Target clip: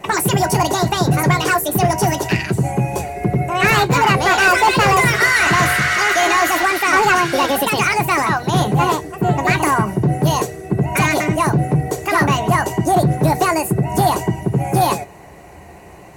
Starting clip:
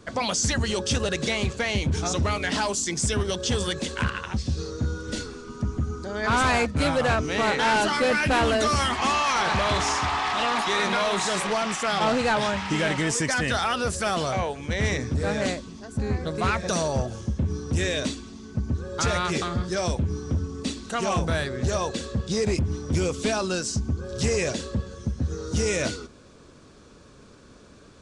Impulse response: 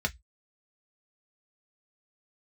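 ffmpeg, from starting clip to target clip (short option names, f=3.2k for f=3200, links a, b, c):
-filter_complex "[0:a]asetrate=76440,aresample=44100,asplit=2[a][b];[1:a]atrim=start_sample=2205,asetrate=48510,aresample=44100[c];[b][c]afir=irnorm=-1:irlink=0,volume=-7.5dB[d];[a][d]amix=inputs=2:normalize=0,acontrast=81"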